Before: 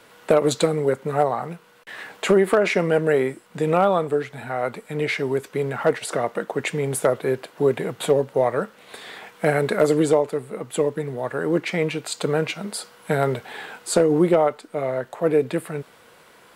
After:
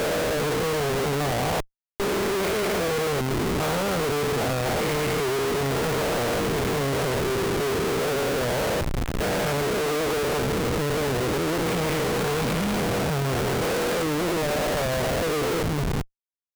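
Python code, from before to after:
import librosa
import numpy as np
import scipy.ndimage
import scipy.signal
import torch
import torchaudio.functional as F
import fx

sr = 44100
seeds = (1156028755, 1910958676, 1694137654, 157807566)

y = fx.spec_steps(x, sr, hold_ms=400)
y = fx.schmitt(y, sr, flips_db=-35.0)
y = y * librosa.db_to_amplitude(2.5)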